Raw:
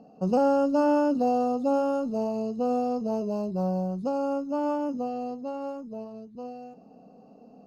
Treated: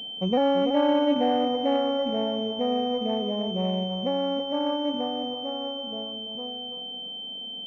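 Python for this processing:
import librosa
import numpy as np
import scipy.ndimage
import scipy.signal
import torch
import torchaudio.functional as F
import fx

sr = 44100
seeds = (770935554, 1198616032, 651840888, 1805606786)

y = fx.echo_thinned(x, sr, ms=334, feedback_pct=23, hz=230.0, wet_db=-6)
y = fx.pwm(y, sr, carrier_hz=3100.0)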